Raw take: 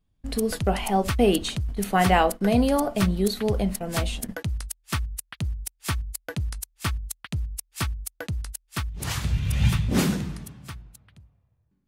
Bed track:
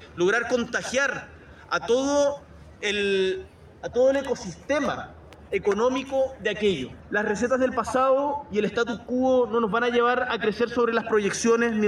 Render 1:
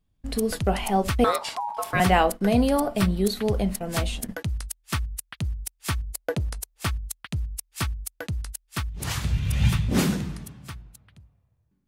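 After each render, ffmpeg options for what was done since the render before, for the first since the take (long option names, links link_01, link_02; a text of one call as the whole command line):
ffmpeg -i in.wav -filter_complex "[0:a]asettb=1/sr,asplit=3[link_01][link_02][link_03];[link_01]atrim=end=1.244[link_04];[link_02]atrim=start=1.24:end=2,asetpts=PTS-STARTPTS,afade=type=in:duration=0.004:curve=qsin,afade=type=out:start_time=0.756:duration=0.004:curve=qsin,aeval=exprs='val(0)*sin(2*PI*890*n/s)':channel_layout=same[link_05];[link_03]atrim=start=1.996[link_06];[link_04][link_05]acrossfade=duration=0.004:curve1=hsin:curve2=qsin[link_07];[link_07][link_06]acrossfade=duration=0.004:curve1=qsin:curve2=hsin,asettb=1/sr,asplit=3[link_08][link_09][link_10];[link_08]atrim=end=2.694[link_11];[link_09]atrim=start=2.69:end=3.26,asetpts=PTS-STARTPTS,afade=type=in:duration=0.004:curve=qsin,afade=type=out:start_time=0.566:duration=0.004:curve=qsin,bandreject=frequency=6500:width=6.9[link_12];[link_10]atrim=start=3.256[link_13];[link_11][link_12]acrossfade=duration=0.004:curve1=hsin:curve2=qsin[link_14];[link_14][link_13]acrossfade=duration=0.004:curve1=qsin:curve2=hsin,asettb=1/sr,asplit=3[link_15][link_16][link_17];[link_15]atrim=end=6.044[link_18];[link_16]atrim=start=6.04:end=6.85,asetpts=PTS-STARTPTS,afade=type=in:duration=0.004:curve=qsin,afade=type=out:start_time=0.806:duration=0.004:curve=qsin,equalizer=frequency=510:width_type=o:width=1.6:gain=11[link_19];[link_17]atrim=start=6.846[link_20];[link_18][link_19]acrossfade=duration=0.004:curve1=hsin:curve2=qsin[link_21];[link_21][link_20]acrossfade=duration=0.004:curve1=qsin:curve2=hsin" out.wav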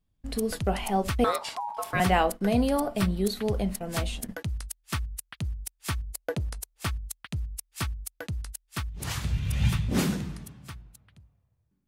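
ffmpeg -i in.wav -af "volume=-3.5dB" out.wav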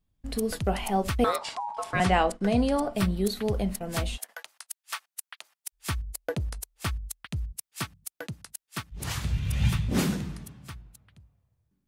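ffmpeg -i in.wav -filter_complex "[0:a]asettb=1/sr,asplit=3[link_01][link_02][link_03];[link_01]atrim=end=1.374[link_04];[link_02]atrim=start=1.37:end=2.93,asetpts=PTS-STARTPTS,afade=type=in:duration=0.004:curve=qsin,afade=type=out:start_time=1.556:duration=0.004:curve=qsin,lowpass=frequency=9300:width=0.5412,lowpass=frequency=9300:width=1.3066[link_05];[link_03]atrim=start=2.926[link_06];[link_04][link_05]acrossfade=duration=0.004:curve1=hsin:curve2=qsin[link_07];[link_07][link_06]acrossfade=duration=0.004:curve1=qsin:curve2=hsin,asplit=3[link_08][link_09][link_10];[link_08]afade=type=out:start_time=4.16:duration=0.02[link_11];[link_09]highpass=frequency=710:width=0.5412,highpass=frequency=710:width=1.3066,afade=type=in:start_time=4.16:duration=0.02,afade=type=out:start_time=5.72:duration=0.02[link_12];[link_10]afade=type=in:start_time=5.72:duration=0.02[link_13];[link_11][link_12][link_13]amix=inputs=3:normalize=0,asplit=3[link_14][link_15][link_16];[link_14]afade=type=out:start_time=7.51:duration=0.02[link_17];[link_15]highpass=frequency=120:width=0.5412,highpass=frequency=120:width=1.3066,afade=type=in:start_time=7.51:duration=0.02,afade=type=out:start_time=8.91:duration=0.02[link_18];[link_16]afade=type=in:start_time=8.91:duration=0.02[link_19];[link_17][link_18][link_19]amix=inputs=3:normalize=0" out.wav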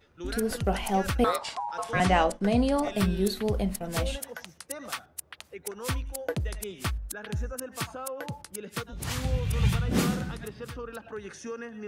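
ffmpeg -i in.wav -i bed.wav -filter_complex "[1:a]volume=-17dB[link_01];[0:a][link_01]amix=inputs=2:normalize=0" out.wav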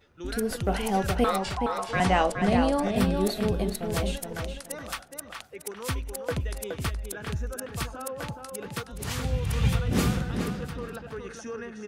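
ffmpeg -i in.wav -filter_complex "[0:a]asplit=2[link_01][link_02];[link_02]adelay=420,lowpass=frequency=3800:poles=1,volume=-5dB,asplit=2[link_03][link_04];[link_04]adelay=420,lowpass=frequency=3800:poles=1,volume=0.25,asplit=2[link_05][link_06];[link_06]adelay=420,lowpass=frequency=3800:poles=1,volume=0.25[link_07];[link_01][link_03][link_05][link_07]amix=inputs=4:normalize=0" out.wav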